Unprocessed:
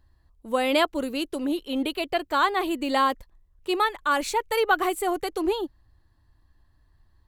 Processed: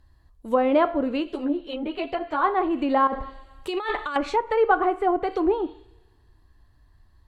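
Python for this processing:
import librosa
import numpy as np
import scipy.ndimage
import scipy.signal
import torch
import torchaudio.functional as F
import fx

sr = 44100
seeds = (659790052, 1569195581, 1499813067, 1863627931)

y = fx.rev_double_slope(x, sr, seeds[0], early_s=0.5, late_s=1.8, knee_db=-24, drr_db=10.0)
y = fx.over_compress(y, sr, threshold_db=-31.0, ratio=-1.0, at=(3.07, 4.16))
y = fx.env_lowpass_down(y, sr, base_hz=1200.0, full_db=-22.0)
y = fx.ensemble(y, sr, at=(1.22, 2.43), fade=0.02)
y = y * librosa.db_to_amplitude(3.5)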